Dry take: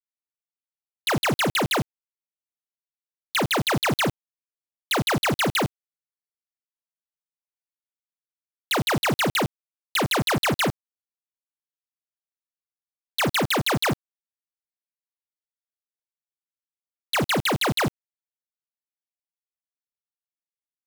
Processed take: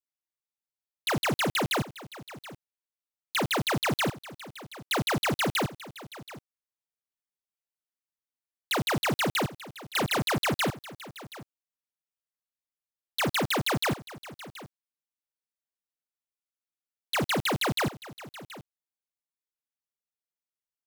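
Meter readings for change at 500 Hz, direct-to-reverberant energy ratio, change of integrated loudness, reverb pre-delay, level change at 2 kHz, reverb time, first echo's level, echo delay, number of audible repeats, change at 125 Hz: −4.5 dB, no reverb audible, −4.5 dB, no reverb audible, −4.5 dB, no reverb audible, −17.0 dB, 727 ms, 1, −4.5 dB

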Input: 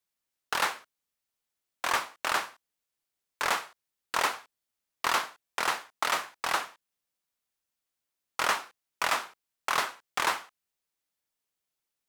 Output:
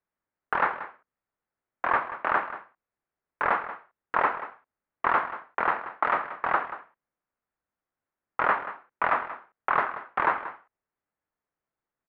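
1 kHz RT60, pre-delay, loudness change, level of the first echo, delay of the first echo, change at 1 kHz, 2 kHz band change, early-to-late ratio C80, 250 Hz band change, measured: no reverb audible, no reverb audible, +2.5 dB, −13.5 dB, 183 ms, +5.0 dB, +2.0 dB, no reverb audible, +5.0 dB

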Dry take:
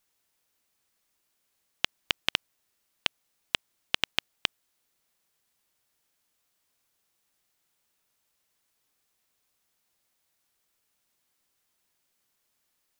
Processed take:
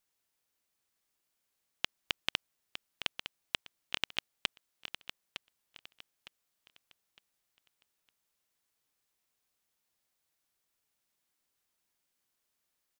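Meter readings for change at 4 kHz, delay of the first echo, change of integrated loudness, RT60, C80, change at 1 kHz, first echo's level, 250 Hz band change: −6.0 dB, 909 ms, −8.0 dB, no reverb audible, no reverb audible, −6.0 dB, −10.0 dB, −6.0 dB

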